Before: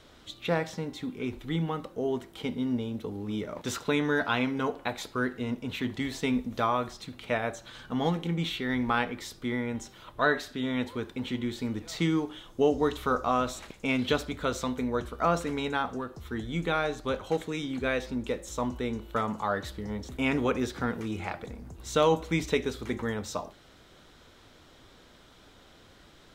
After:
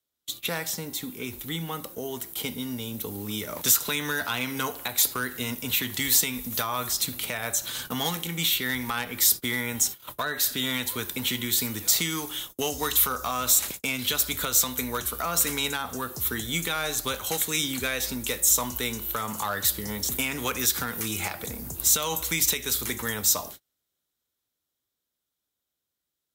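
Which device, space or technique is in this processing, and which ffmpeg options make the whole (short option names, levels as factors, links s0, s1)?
FM broadcast chain: -filter_complex "[0:a]agate=range=0.0141:threshold=0.00447:ratio=16:detection=peak,highpass=49,dynaudnorm=f=210:g=31:m=2.24,acrossover=split=110|950[s0][s1][s2];[s0]acompressor=threshold=0.00794:ratio=4[s3];[s1]acompressor=threshold=0.02:ratio=4[s4];[s2]acompressor=threshold=0.0447:ratio=4[s5];[s3][s4][s5]amix=inputs=3:normalize=0,aemphasis=mode=production:type=50fm,alimiter=limit=0.126:level=0:latency=1:release=218,asoftclip=type=hard:threshold=0.0841,lowpass=f=15000:w=0.5412,lowpass=f=15000:w=1.3066,aemphasis=mode=production:type=50fm,volume=1.12"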